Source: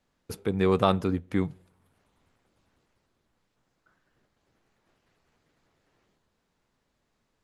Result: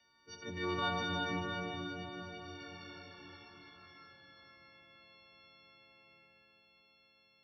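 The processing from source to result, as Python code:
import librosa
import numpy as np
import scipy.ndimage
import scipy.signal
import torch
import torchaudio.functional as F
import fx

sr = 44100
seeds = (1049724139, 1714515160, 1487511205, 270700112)

y = fx.freq_snap(x, sr, grid_st=4)
y = fx.doppler_pass(y, sr, speed_mps=11, closest_m=3.8, pass_at_s=2.76)
y = fx.brickwall_lowpass(y, sr, high_hz=6200.0)
y = fx.peak_eq(y, sr, hz=2800.0, db=10.5, octaves=2.5)
y = fx.echo_feedback(y, sr, ms=352, feedback_pct=57, wet_db=-15.0)
y = fx.transient(y, sr, attack_db=-12, sustain_db=2)
y = scipy.signal.sosfilt(scipy.signal.butter(2, 45.0, 'highpass', fs=sr, output='sos'), y)
y = fx.rev_plate(y, sr, seeds[0], rt60_s=3.5, hf_ratio=0.75, predelay_ms=0, drr_db=-1.5)
y = fx.band_squash(y, sr, depth_pct=40)
y = y * librosa.db_to_amplitude(1.5)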